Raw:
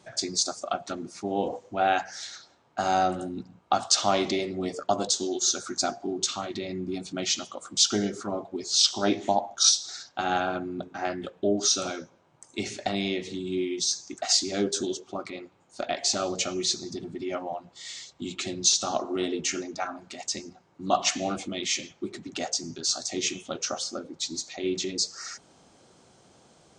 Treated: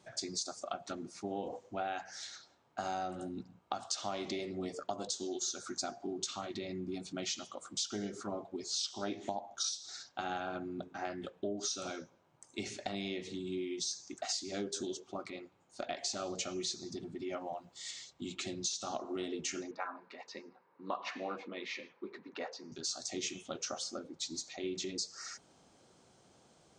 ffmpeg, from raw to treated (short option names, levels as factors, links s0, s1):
-filter_complex "[0:a]asettb=1/sr,asplit=3[s0][s1][s2];[s0]atrim=end=17.414[s3];[s1]atrim=start=17.41:end=17.91,asetpts=PTS-STARTPTS,afade=t=in:d=0.004:c=qsin,afade=t=out:st=0.496:d=0.004:c=qsin,highshelf=f=6900:g=10.5[s4];[s2]atrim=start=17.906[s5];[s3][s4]acrossfade=d=0.004:c1=hsin:c2=qsin[s6];[s6][s5]acrossfade=d=0.004:c1=qsin:c2=hsin,asettb=1/sr,asplit=3[s7][s8][s9];[s7]atrim=end=19.714[s10];[s8]atrim=start=19.71:end=22.72,asetpts=PTS-STARTPTS,afade=t=in:d=0.004:c=qsin,afade=t=out:st=3.006:d=0.004:c=qsin,highpass=300,equalizer=f=330:t=q:w=4:g=-4,equalizer=f=480:t=q:w=4:g=8,equalizer=f=690:t=q:w=4:g=-7,equalizer=f=1000:t=q:w=4:g=9,equalizer=f=1700:t=q:w=4:g=4,equalizer=f=3200:t=q:w=4:g=-10,lowpass=f=3700:w=0.5412,lowpass=f=3700:w=1.3066[s11];[s9]atrim=start=22.716[s12];[s10][s11]acrossfade=d=0.004:c1=hsin:c2=qsin[s13];[s13][s12]acrossfade=d=0.004:c1=qsin:c2=hsin,acompressor=threshold=0.0447:ratio=6,volume=0.447"